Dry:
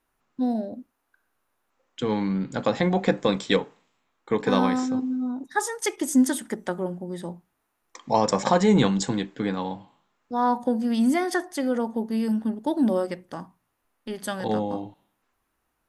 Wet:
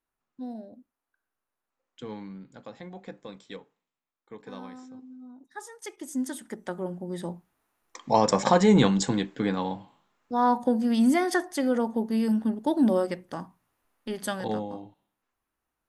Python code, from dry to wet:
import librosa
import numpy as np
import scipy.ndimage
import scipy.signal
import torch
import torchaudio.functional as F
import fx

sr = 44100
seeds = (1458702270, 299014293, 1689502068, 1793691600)

y = fx.gain(x, sr, db=fx.line((2.06, -12.5), (2.63, -20.0), (4.98, -20.0), (6.2, -11.0), (7.19, 0.0), (14.27, 0.0), (14.75, -8.5)))